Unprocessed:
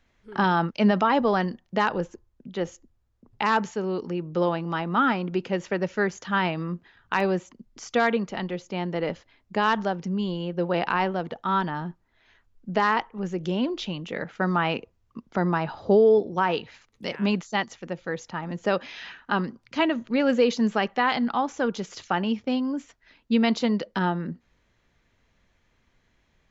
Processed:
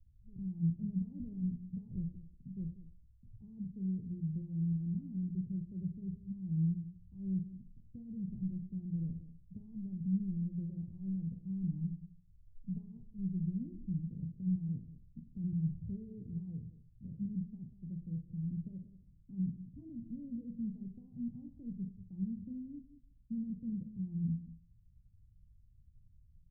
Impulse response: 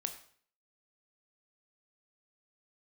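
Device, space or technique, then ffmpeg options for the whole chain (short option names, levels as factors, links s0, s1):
club heard from the street: -filter_complex "[0:a]alimiter=limit=0.106:level=0:latency=1:release=26,lowpass=f=130:w=0.5412,lowpass=f=130:w=1.3066[s0];[1:a]atrim=start_sample=2205[s1];[s0][s1]afir=irnorm=-1:irlink=0,asettb=1/sr,asplit=3[s2][s3][s4];[s2]atrim=end=11.504[s5];[s3]atrim=start=11.5:end=12.85,asetpts=PTS-STARTPTS,afade=t=in:d=0.004:c=qsin,afade=t=out:st=1.346:d=0.004:c=qsin,equalizer=f=2300:w=0.61:g=8.5[s6];[s4]atrim=start=12.846[s7];[s5][s6]acrossfade=d=0.004:c1=hsin:c2=qsin[s8];[s8][s7]acrossfade=d=0.004:c1=qsin:c2=hsin,aecho=1:1:190:0.188,volume=2.51"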